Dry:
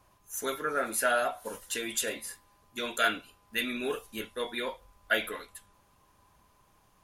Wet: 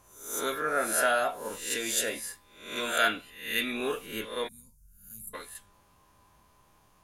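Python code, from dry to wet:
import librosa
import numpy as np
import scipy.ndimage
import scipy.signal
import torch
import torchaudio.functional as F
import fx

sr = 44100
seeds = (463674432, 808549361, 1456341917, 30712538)

y = fx.spec_swells(x, sr, rise_s=0.57)
y = fx.quant_float(y, sr, bits=6, at=(1.96, 2.83))
y = fx.cheby2_bandstop(y, sr, low_hz=320.0, high_hz=3600.0, order=4, stop_db=40, at=(4.47, 5.33), fade=0.02)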